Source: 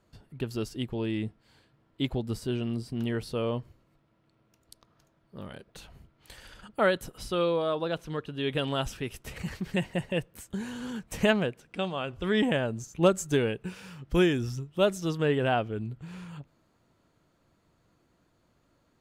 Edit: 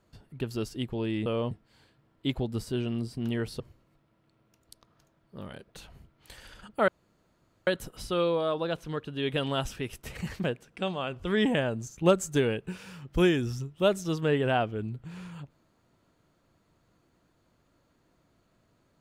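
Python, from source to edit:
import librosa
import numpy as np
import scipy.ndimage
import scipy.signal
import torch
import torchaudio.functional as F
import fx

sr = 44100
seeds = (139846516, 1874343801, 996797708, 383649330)

y = fx.edit(x, sr, fx.move(start_s=3.35, length_s=0.25, to_s=1.26),
    fx.insert_room_tone(at_s=6.88, length_s=0.79),
    fx.cut(start_s=9.65, length_s=1.76), tone=tone)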